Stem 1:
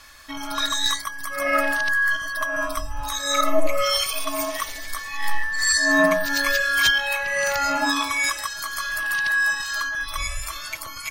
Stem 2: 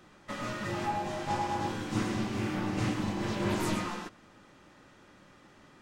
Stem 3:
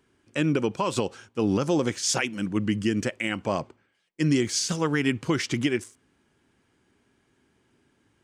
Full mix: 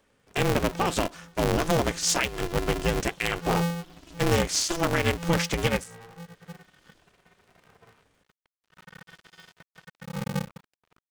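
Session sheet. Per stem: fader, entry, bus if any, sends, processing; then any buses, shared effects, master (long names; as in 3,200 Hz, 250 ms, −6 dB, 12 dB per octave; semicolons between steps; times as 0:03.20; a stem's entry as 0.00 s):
−14.5 dB, 0.00 s, no send, running median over 9 samples; spectral tilt −4 dB per octave; dead-zone distortion −18.5 dBFS; automatic ducking −15 dB, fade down 1.30 s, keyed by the third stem
+0.5 dB, 1.30 s, no send, brick-wall band-stop 190–2,700 Hz; reverb reduction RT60 1.7 s; downward compressor 10 to 1, threshold −45 dBFS, peak gain reduction 15.5 dB
+1.0 dB, 0.00 s, no send, no processing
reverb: not used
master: low-shelf EQ 170 Hz −5 dB; ring modulator with a square carrier 170 Hz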